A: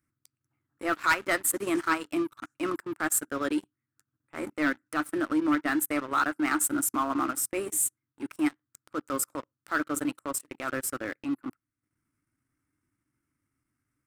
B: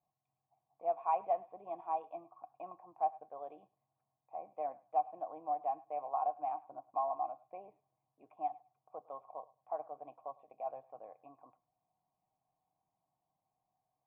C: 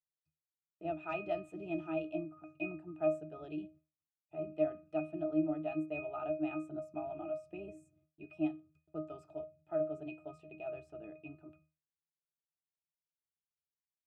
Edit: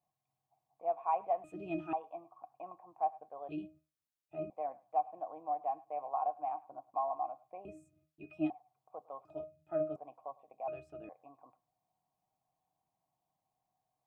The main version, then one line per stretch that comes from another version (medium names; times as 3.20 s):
B
1.44–1.93 s: from C
3.49–4.50 s: from C
7.65–8.50 s: from C
9.25–9.96 s: from C
10.68–11.09 s: from C
not used: A